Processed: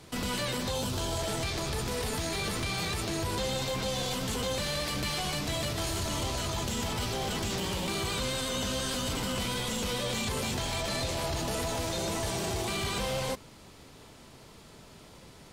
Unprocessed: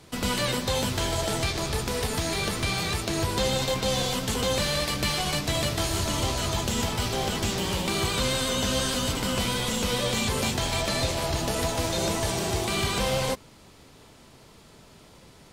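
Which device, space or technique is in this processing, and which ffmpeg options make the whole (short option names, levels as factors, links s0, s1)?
soft clipper into limiter: -filter_complex "[0:a]asettb=1/sr,asplit=3[s0][s1][s2];[s0]atrim=end=0.714[s3];[s1]atrim=start=0.71:end=1.17,asetpts=PTS-STARTPTS,afade=t=in:d=0.004:c=qsin,afade=t=out:st=0.456:d=0.004:c=qsin,equalizer=f=2000:t=o:w=0.56:g=-9[s4];[s2]atrim=start=1.166[s5];[s3][s4]acrossfade=d=0.004:c1=hsin:c2=qsin[s6];[s6][s5]acrossfade=d=0.004:c1=qsin:c2=hsin,asoftclip=type=tanh:threshold=0.158,alimiter=level_in=1.06:limit=0.0631:level=0:latency=1:release=22,volume=0.944"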